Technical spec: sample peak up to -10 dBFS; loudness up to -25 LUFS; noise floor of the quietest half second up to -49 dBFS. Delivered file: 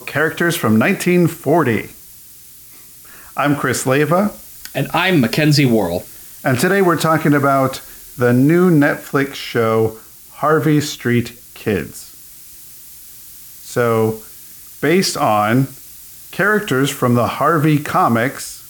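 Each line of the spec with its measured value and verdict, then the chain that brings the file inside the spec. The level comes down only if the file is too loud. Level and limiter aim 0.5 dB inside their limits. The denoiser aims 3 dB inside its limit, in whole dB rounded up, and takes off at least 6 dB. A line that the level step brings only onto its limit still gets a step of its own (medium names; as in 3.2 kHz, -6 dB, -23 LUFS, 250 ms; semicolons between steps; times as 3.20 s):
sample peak -4.0 dBFS: fail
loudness -16.0 LUFS: fail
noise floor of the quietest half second -40 dBFS: fail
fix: trim -9.5 dB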